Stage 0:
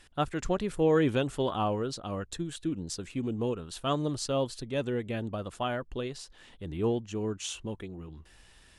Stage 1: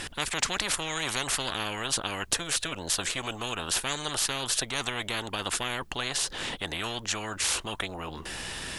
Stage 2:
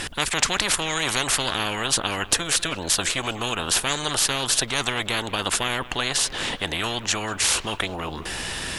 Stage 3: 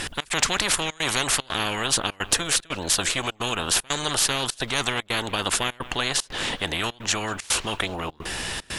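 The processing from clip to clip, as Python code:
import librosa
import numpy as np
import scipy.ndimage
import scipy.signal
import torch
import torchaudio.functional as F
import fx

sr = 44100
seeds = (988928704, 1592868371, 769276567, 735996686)

y1 = fx.spectral_comp(x, sr, ratio=10.0)
y1 = y1 * librosa.db_to_amplitude(7.0)
y2 = fx.echo_wet_lowpass(y1, sr, ms=194, feedback_pct=46, hz=3200.0, wet_db=-17.0)
y2 = y2 * librosa.db_to_amplitude(6.5)
y3 = 10.0 ** (-4.5 / 20.0) * np.tanh(y2 / 10.0 ** (-4.5 / 20.0))
y3 = fx.step_gate(y3, sr, bpm=150, pattern='xx.xxxxxx.xx', floor_db=-24.0, edge_ms=4.5)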